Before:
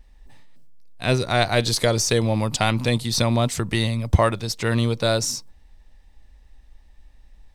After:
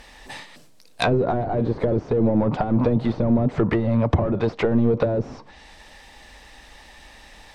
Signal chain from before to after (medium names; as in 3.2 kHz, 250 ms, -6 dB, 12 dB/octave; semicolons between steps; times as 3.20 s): overdrive pedal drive 32 dB, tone 6.9 kHz, clips at -3 dBFS; low-pass that closes with the level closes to 350 Hz, closed at -8.5 dBFS; trim -3.5 dB